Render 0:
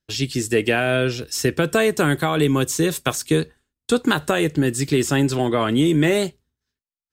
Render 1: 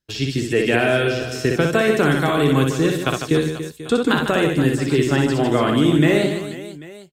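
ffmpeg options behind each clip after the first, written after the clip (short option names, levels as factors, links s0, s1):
-filter_complex "[0:a]aecho=1:1:60|150|285|487.5|791.2:0.631|0.398|0.251|0.158|0.1,acrossover=split=4300[s0][s1];[s1]acompressor=threshold=0.0112:ratio=6[s2];[s0][s2]amix=inputs=2:normalize=0"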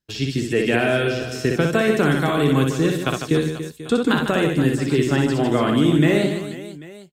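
-af "equalizer=f=200:t=o:w=0.75:g=3.5,volume=0.794"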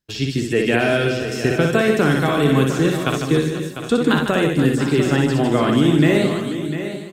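-af "aecho=1:1:699:0.299,volume=1.19"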